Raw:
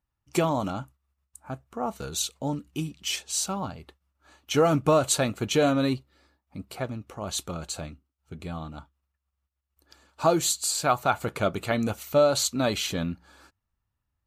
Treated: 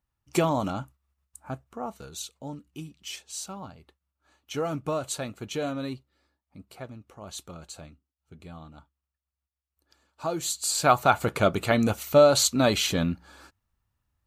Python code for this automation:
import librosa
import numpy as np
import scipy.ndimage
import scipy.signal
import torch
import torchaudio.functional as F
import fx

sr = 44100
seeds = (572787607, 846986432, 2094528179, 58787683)

y = fx.gain(x, sr, db=fx.line((1.53, 0.5), (2.09, -8.5), (10.29, -8.5), (10.87, 3.5)))